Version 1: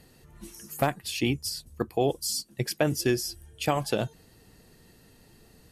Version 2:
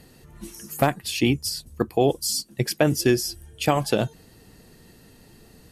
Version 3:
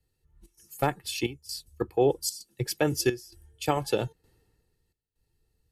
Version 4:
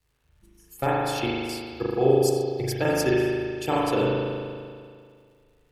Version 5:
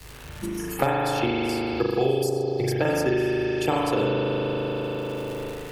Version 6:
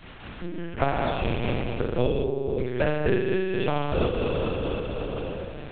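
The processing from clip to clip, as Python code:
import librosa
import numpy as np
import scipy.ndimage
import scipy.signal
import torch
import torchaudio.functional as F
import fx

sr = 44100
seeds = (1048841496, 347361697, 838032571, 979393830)

y1 = fx.peak_eq(x, sr, hz=240.0, db=2.0, octaves=1.4)
y1 = y1 * librosa.db_to_amplitude(4.5)
y2 = y1 + 0.49 * np.pad(y1, (int(2.3 * sr / 1000.0), 0))[:len(y1)]
y2 = fx.step_gate(y2, sr, bpm=131, pattern='xxxx.xxxxxx..xxx', floor_db=-12.0, edge_ms=4.5)
y2 = fx.band_widen(y2, sr, depth_pct=70)
y2 = y2 * librosa.db_to_amplitude(-7.5)
y3 = fx.dmg_crackle(y2, sr, seeds[0], per_s=270.0, level_db=-58.0)
y3 = fx.rev_spring(y3, sr, rt60_s=2.1, pass_ms=(38,), chirp_ms=75, drr_db=-6.5)
y3 = y3 * librosa.db_to_amplitude(-2.0)
y4 = fx.band_squash(y3, sr, depth_pct=100)
y5 = fx.lpc_vocoder(y4, sr, seeds[1], excitation='pitch_kept', order=8)
y5 = fx.am_noise(y5, sr, seeds[2], hz=5.7, depth_pct=55)
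y5 = y5 * librosa.db_to_amplitude(1.5)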